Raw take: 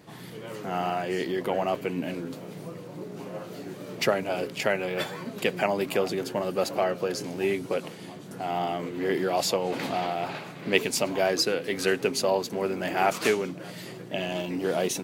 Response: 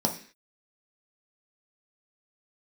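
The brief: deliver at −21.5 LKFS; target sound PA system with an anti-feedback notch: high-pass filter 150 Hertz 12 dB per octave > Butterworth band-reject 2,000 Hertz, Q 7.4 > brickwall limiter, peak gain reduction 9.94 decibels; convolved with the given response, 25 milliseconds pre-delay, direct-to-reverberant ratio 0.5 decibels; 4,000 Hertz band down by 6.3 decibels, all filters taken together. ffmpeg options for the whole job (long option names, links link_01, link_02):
-filter_complex "[0:a]equalizer=frequency=4000:width_type=o:gain=-9,asplit=2[link_01][link_02];[1:a]atrim=start_sample=2205,adelay=25[link_03];[link_02][link_03]afir=irnorm=-1:irlink=0,volume=-10dB[link_04];[link_01][link_04]amix=inputs=2:normalize=0,highpass=150,asuperstop=centerf=2000:order=8:qfactor=7.4,volume=6dB,alimiter=limit=-11.5dB:level=0:latency=1"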